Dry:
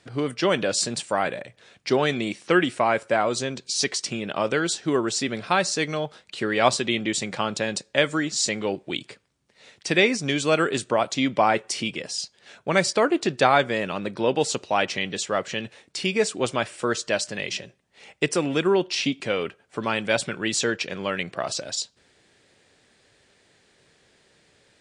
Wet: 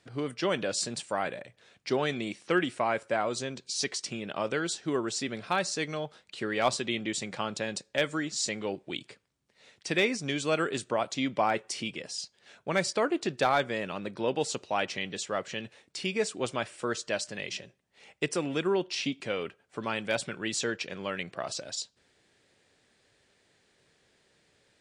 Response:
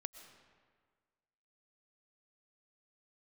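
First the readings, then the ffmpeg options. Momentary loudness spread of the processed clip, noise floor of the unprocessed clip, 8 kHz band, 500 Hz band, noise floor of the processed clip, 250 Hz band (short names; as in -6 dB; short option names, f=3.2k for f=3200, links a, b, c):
9 LU, -63 dBFS, -7.0 dB, -7.0 dB, -70 dBFS, -7.0 dB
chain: -af "volume=8dB,asoftclip=hard,volume=-8dB,volume=-7dB"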